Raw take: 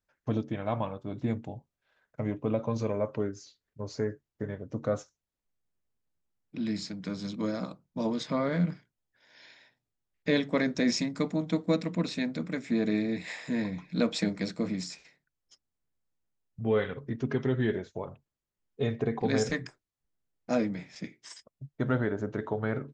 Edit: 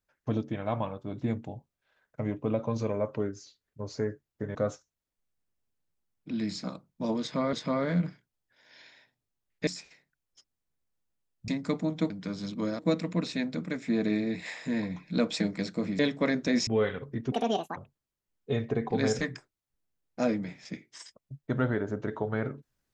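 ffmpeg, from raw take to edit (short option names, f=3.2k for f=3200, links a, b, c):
-filter_complex "[0:a]asplit=12[a][b][c][d][e][f][g][h][i][j][k][l];[a]atrim=end=4.552[m];[b]atrim=start=4.818:end=6.912[n];[c]atrim=start=7.598:end=8.492[o];[d]atrim=start=8.168:end=10.312[p];[e]atrim=start=14.808:end=16.622[q];[f]atrim=start=10.988:end=11.612[r];[g]atrim=start=6.908:end=7.602[s];[h]atrim=start=11.608:end=14.812[t];[i]atrim=start=10.308:end=10.992[u];[j]atrim=start=16.618:end=17.274[v];[k]atrim=start=17.27:end=18.07,asetpts=PTS-STARTPTS,asetrate=79380,aresample=44100[w];[l]atrim=start=18.066[x];[m][n]acrossfade=d=0.004:c1=hsin:c2=hsin[y];[y][o]acrossfade=d=0.004:c1=hsin:c2=hsin[z];[z][p]acrossfade=d=0.004:c1=hsin:c2=hsin[aa];[aa][q]acrossfade=d=0.004:c1=hsin:c2=hsin[ab];[ab][r]acrossfade=d=0.004:c1=hsin:c2=hsin[ac];[ac][s]acrossfade=d=0.004:c1=hsin:c2=hsin[ad];[ad][t]acrossfade=d=0.004:c1=hsin:c2=hsin[ae];[ae][u]acrossfade=d=0.004:c1=hsin:c2=hsin[af];[af][v]acrossfade=d=0.004:c1=hsin:c2=hsin[ag];[ag][w]acrossfade=d=0.004:c1=hsin:c2=hsin[ah];[ah][x]acrossfade=d=0.004:c1=hsin:c2=hsin"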